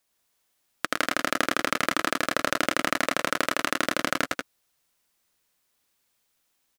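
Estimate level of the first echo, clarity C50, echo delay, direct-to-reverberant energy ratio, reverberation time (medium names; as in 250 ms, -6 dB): -3.0 dB, no reverb, 109 ms, no reverb, no reverb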